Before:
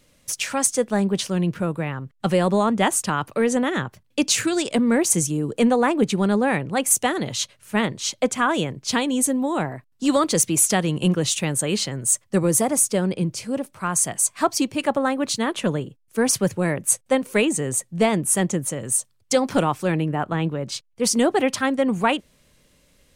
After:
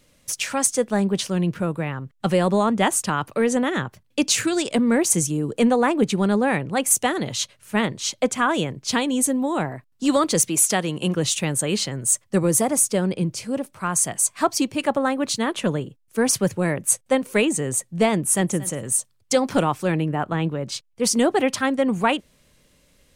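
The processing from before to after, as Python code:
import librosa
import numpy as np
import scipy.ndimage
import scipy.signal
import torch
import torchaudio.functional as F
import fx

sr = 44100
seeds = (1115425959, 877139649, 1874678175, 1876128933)

y = fx.highpass(x, sr, hz=240.0, slope=6, at=(10.48, 11.15))
y = fx.echo_throw(y, sr, start_s=18.13, length_s=0.4, ms=230, feedback_pct=20, wet_db=-17.5)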